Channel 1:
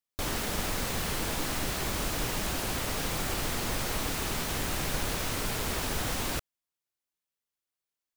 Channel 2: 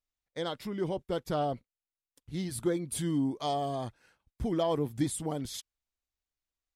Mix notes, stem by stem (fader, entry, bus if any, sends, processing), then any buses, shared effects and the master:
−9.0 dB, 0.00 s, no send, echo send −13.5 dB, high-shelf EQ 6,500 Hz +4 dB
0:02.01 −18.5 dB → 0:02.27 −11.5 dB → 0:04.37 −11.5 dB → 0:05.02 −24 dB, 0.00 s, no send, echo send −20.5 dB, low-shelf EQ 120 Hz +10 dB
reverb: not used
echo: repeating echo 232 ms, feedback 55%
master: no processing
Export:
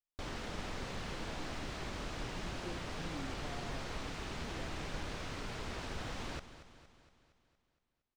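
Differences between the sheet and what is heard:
stem 2 −18.5 dB → −26.0 dB
master: extra high-frequency loss of the air 130 metres

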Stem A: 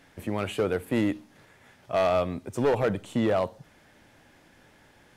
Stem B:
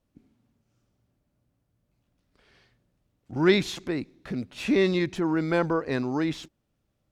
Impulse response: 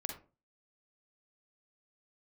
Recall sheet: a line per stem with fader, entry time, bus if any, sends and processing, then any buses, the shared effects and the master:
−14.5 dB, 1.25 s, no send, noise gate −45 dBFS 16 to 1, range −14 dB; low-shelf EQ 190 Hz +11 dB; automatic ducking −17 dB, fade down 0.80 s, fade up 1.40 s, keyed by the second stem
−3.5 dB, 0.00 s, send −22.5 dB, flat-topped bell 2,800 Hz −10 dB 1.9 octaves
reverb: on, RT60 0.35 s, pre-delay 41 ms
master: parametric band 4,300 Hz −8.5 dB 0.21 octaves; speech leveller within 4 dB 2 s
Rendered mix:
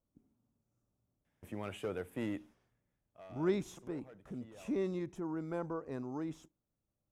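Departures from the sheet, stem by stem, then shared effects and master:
stem A: missing low-shelf EQ 190 Hz +11 dB
stem B −3.5 dB → −13.5 dB

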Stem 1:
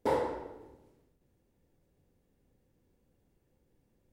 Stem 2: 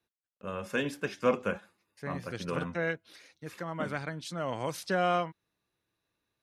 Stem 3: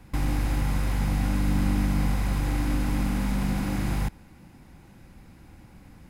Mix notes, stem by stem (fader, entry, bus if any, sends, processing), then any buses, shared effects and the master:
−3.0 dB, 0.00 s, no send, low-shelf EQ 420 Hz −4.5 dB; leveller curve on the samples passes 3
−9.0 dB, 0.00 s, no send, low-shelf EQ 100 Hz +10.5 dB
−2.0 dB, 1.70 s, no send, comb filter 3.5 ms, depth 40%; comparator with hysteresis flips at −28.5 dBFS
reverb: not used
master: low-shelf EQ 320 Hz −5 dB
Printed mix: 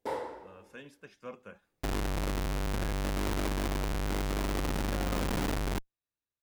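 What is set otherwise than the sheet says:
stem 1: missing leveller curve on the samples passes 3
stem 2 −9.0 dB → −16.5 dB

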